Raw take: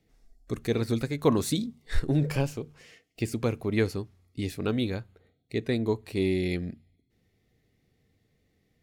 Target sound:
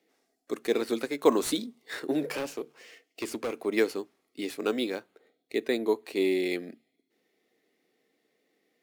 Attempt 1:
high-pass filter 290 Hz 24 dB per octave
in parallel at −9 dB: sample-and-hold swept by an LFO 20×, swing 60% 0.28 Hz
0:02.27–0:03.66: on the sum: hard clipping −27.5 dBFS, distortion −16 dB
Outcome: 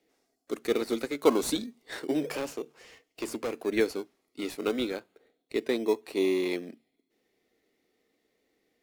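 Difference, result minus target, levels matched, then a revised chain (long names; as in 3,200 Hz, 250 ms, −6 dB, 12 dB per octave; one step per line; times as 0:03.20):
sample-and-hold swept by an LFO: distortion +9 dB
high-pass filter 290 Hz 24 dB per octave
in parallel at −9 dB: sample-and-hold swept by an LFO 5×, swing 60% 0.28 Hz
0:02.27–0:03.66: on the sum: hard clipping −27.5 dBFS, distortion −16 dB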